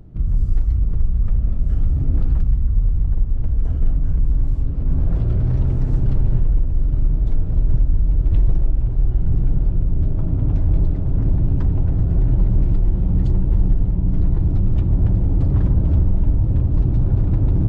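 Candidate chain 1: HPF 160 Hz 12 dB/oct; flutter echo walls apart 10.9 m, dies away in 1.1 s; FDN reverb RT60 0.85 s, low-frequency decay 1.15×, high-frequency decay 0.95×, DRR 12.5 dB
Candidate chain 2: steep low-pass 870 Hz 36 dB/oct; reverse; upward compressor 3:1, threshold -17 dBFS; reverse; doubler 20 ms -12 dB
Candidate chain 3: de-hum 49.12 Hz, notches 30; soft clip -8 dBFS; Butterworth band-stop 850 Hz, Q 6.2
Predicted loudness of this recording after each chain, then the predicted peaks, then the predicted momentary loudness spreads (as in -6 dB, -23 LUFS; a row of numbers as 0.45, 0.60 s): -26.5, -20.5, -22.0 LUFS; -11.0, -5.5, -9.5 dBFS; 10, 4, 4 LU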